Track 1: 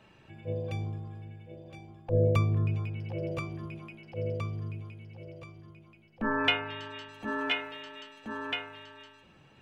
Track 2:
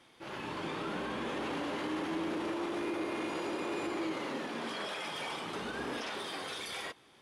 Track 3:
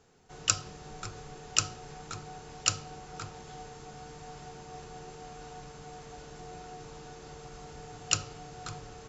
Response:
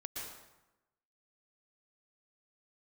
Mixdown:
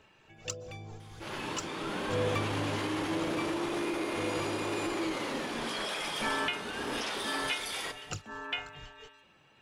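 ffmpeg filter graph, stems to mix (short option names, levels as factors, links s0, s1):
-filter_complex "[0:a]lowshelf=f=360:g=-11,volume=0.944[s0];[1:a]highshelf=f=4100:g=8,adelay=1000,volume=1.12,asplit=2[s1][s2];[s2]volume=0.224[s3];[2:a]aphaser=in_gain=1:out_gain=1:delay=2.5:decay=0.75:speed=1.6:type=triangular,tremolo=f=4.3:d=0.97,volume=0.335,asplit=2[s4][s5];[s5]volume=0.0708[s6];[3:a]atrim=start_sample=2205[s7];[s3][s6]amix=inputs=2:normalize=0[s8];[s8][s7]afir=irnorm=-1:irlink=0[s9];[s0][s1][s4][s9]amix=inputs=4:normalize=0,alimiter=limit=0.106:level=0:latency=1:release=461"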